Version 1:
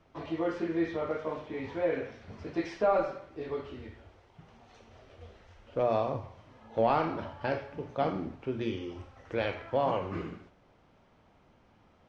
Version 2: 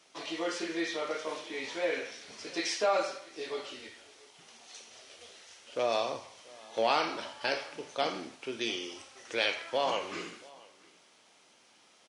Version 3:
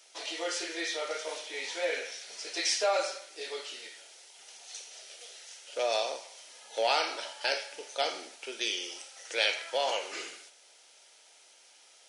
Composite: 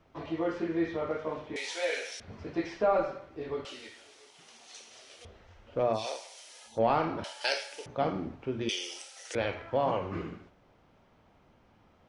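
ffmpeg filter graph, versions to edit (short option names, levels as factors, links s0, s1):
-filter_complex "[2:a]asplit=4[s0][s1][s2][s3];[0:a]asplit=6[s4][s5][s6][s7][s8][s9];[s4]atrim=end=1.562[s10];[s0]atrim=start=1.558:end=2.202[s11];[s5]atrim=start=2.198:end=3.652[s12];[1:a]atrim=start=3.648:end=5.252[s13];[s6]atrim=start=5.248:end=6.08[s14];[s1]atrim=start=5.92:end=6.81[s15];[s7]atrim=start=6.65:end=7.242[s16];[s2]atrim=start=7.238:end=7.862[s17];[s8]atrim=start=7.858:end=8.692[s18];[s3]atrim=start=8.688:end=9.352[s19];[s9]atrim=start=9.348[s20];[s10][s11]acrossfade=d=0.004:c1=hsin:c2=hsin[s21];[s21][s12]acrossfade=d=0.004:c1=hsin:c2=hsin[s22];[s22][s13]acrossfade=d=0.004:c1=hsin:c2=hsin[s23];[s23][s14]acrossfade=d=0.004:c1=hsin:c2=hsin[s24];[s24][s15]acrossfade=d=0.16:c1=tri:c2=tri[s25];[s25][s16]acrossfade=d=0.16:c1=tri:c2=tri[s26];[s26][s17]acrossfade=d=0.004:c1=hsin:c2=hsin[s27];[s27][s18]acrossfade=d=0.004:c1=hsin:c2=hsin[s28];[s28][s19]acrossfade=d=0.004:c1=hsin:c2=hsin[s29];[s29][s20]acrossfade=d=0.004:c1=hsin:c2=hsin"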